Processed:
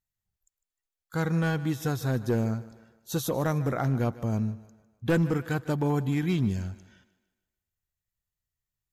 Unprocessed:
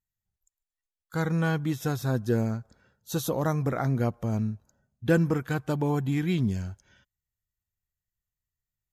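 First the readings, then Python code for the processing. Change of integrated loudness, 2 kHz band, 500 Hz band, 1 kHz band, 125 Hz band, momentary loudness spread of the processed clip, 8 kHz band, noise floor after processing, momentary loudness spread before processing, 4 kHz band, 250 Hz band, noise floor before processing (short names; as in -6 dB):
-0.5 dB, -0.5 dB, -1.0 dB, -0.5 dB, 0.0 dB, 10 LU, 0.0 dB, under -85 dBFS, 9 LU, 0.0 dB, -0.5 dB, under -85 dBFS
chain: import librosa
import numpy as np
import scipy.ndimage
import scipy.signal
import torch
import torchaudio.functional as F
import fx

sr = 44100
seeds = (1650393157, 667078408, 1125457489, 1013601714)

y = np.clip(x, -10.0 ** (-18.5 / 20.0), 10.0 ** (-18.5 / 20.0))
y = fx.echo_thinned(y, sr, ms=152, feedback_pct=45, hz=170.0, wet_db=-17)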